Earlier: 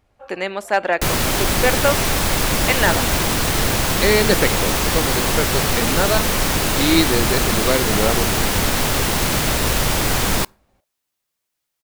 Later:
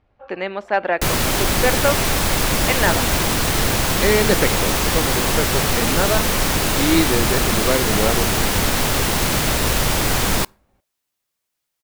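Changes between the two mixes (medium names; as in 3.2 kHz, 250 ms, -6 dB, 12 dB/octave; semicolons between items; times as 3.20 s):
speech: add distance through air 210 m; first sound -7.0 dB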